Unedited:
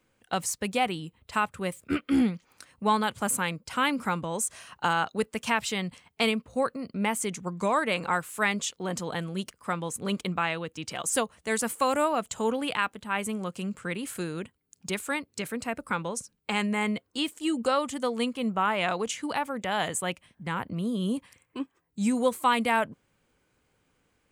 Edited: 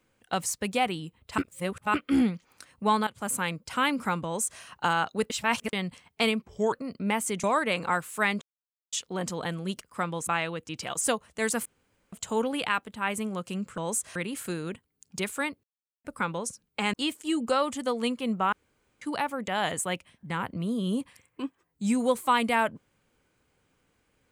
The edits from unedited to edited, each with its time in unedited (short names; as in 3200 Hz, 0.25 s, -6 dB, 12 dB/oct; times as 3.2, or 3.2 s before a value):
1.38–1.94 reverse
3.07–3.59 fade in equal-power, from -14 dB
4.24–4.62 copy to 13.86
5.3–5.73 reverse
6.42–6.67 speed 82%
7.38–7.64 cut
8.62 insert silence 0.51 s
9.97–10.36 cut
11.74–12.21 room tone
15.34–15.75 mute
16.64–17.1 cut
18.69–19.18 room tone